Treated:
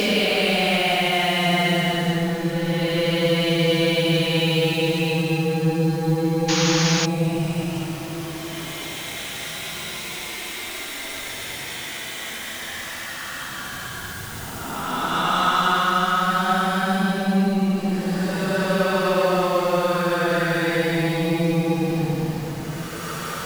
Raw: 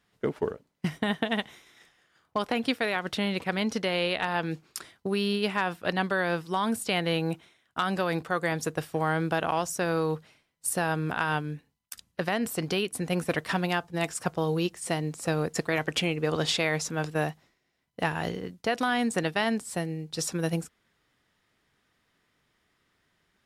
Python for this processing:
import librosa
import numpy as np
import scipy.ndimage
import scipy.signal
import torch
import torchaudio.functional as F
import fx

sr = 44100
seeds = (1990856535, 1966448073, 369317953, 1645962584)

y = x + 0.5 * 10.0 ** (-30.5 / 20.0) * np.sign(x)
y = fx.paulstretch(y, sr, seeds[0], factor=17.0, window_s=0.1, from_s=6.89)
y = fx.spec_paint(y, sr, seeds[1], shape='noise', start_s=6.48, length_s=0.58, low_hz=750.0, high_hz=6900.0, level_db=-28.0)
y = y * librosa.db_to_amplitude(4.5)